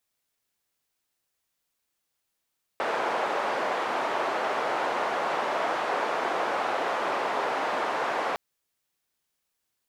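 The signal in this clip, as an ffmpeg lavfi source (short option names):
-f lavfi -i "anoisesrc=c=white:d=5.56:r=44100:seed=1,highpass=f=620,lowpass=f=800,volume=-4.7dB"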